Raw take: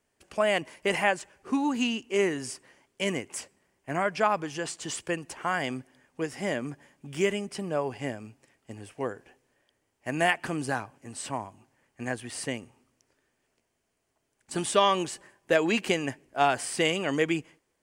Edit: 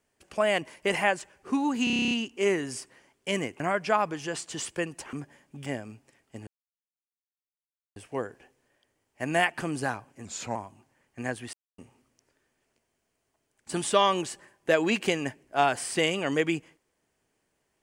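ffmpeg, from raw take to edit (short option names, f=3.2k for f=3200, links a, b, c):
-filter_complex "[0:a]asplit=18[a][b][c][d][e][f][g][h][i][j][k][l][m][n][o][p][q][r];[a]atrim=end=1.872[s];[b]atrim=start=1.838:end=1.872[t];[c]atrim=start=1.838:end=1.872[u];[d]atrim=start=1.838:end=1.872[v];[e]atrim=start=1.838:end=1.872[w];[f]atrim=start=1.838:end=1.872[x];[g]atrim=start=1.838:end=1.872[y];[h]atrim=start=1.838:end=1.872[z];[i]atrim=start=1.838:end=1.872[aa];[j]atrim=start=1.838:end=3.332[ab];[k]atrim=start=3.908:end=5.442[ac];[l]atrim=start=6.628:end=7.162[ad];[m]atrim=start=8.008:end=8.82,asetpts=PTS-STARTPTS,afade=t=out:st=0.808:d=0.004:c=hsin,apad=pad_dur=1.49[ae];[n]atrim=start=8.82:end=11.114,asetpts=PTS-STARTPTS,afade=t=in:d=0.004:c=hsin[af];[o]atrim=start=11.11:end=11.37,asetpts=PTS-STARTPTS,asetrate=37926,aresample=44100[ag];[p]atrim=start=11.366:end=12.35,asetpts=PTS-STARTPTS,afade=t=out:st=0.98:d=0.004:c=hsin[ah];[q]atrim=start=12.35:end=12.6,asetpts=PTS-STARTPTS,volume=0[ai];[r]atrim=start=12.6,asetpts=PTS-STARTPTS,afade=t=in:d=0.004:c=hsin[aj];[s][t]acrossfade=d=0.004:c1=hsin:c2=hsin[ak];[ak][u]acrossfade=d=0.004:c1=hsin:c2=hsin[al];[al][v]acrossfade=d=0.004:c1=hsin:c2=hsin[am];[am][w]acrossfade=d=0.004:c1=hsin:c2=hsin[an];[an][x]acrossfade=d=0.004:c1=hsin:c2=hsin[ao];[ao][y]acrossfade=d=0.004:c1=hsin:c2=hsin[ap];[ap][z]acrossfade=d=0.004:c1=hsin:c2=hsin[aq];[aq][aa]acrossfade=d=0.004:c1=hsin:c2=hsin[ar];[ar][ab]acrossfade=d=0.004:c1=hsin:c2=hsin[as];[as][ac]acrossfade=d=0.004:c1=hsin:c2=hsin[at];[at][ad]acrossfade=d=0.004:c1=hsin:c2=hsin[au];[ae][af]concat=n=2:v=0:a=1[av];[au][av]acrossfade=d=0.004:c1=hsin:c2=hsin[aw];[aw][ag]acrossfade=d=0.004:c1=hsin:c2=hsin[ax];[ah][ai][aj]concat=n=3:v=0:a=1[ay];[ax][ay]acrossfade=d=0.004:c1=hsin:c2=hsin"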